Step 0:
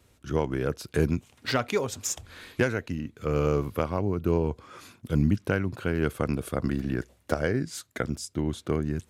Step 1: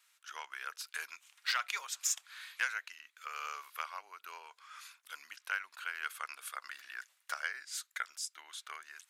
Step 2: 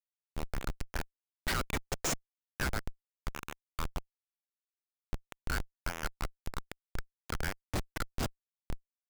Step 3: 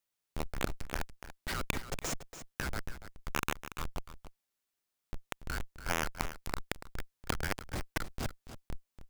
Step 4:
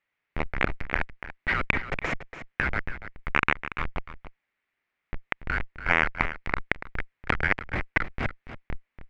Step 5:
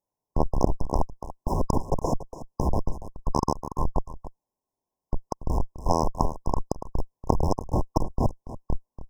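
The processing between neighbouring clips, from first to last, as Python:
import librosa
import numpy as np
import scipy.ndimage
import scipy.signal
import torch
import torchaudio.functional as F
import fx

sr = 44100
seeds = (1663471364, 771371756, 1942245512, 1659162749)

y1 = scipy.signal.sosfilt(scipy.signal.butter(4, 1200.0, 'highpass', fs=sr, output='sos'), x)
y1 = y1 * 10.0 ** (-2.0 / 20.0)
y2 = fx.schmitt(y1, sr, flips_db=-32.5)
y2 = y2 * 10.0 ** (11.5 / 20.0)
y3 = fx.over_compress(y2, sr, threshold_db=-38.0, ratio=-1.0)
y3 = y3 + 10.0 ** (-12.0 / 20.0) * np.pad(y3, (int(286 * sr / 1000.0), 0))[:len(y3)]
y3 = y3 * 10.0 ** (4.5 / 20.0)
y4 = fx.lowpass_res(y3, sr, hz=2100.0, q=3.5)
y4 = y4 * 10.0 ** (6.5 / 20.0)
y5 = fx.leveller(y4, sr, passes=1)
y5 = fx.brickwall_bandstop(y5, sr, low_hz=1100.0, high_hz=5000.0)
y5 = y5 * 10.0 ** (4.0 / 20.0)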